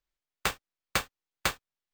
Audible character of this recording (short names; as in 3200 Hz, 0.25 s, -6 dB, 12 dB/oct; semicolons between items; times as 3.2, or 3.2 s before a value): aliases and images of a low sample rate 11000 Hz, jitter 0%